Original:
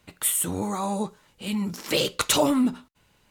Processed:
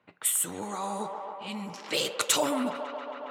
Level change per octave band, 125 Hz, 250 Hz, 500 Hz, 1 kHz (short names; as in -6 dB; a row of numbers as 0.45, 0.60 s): -11.5, -9.5, -4.0, -2.0 dB